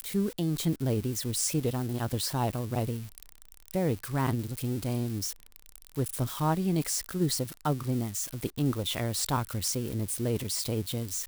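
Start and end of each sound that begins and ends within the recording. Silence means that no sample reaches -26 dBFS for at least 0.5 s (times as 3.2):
3.75–5.26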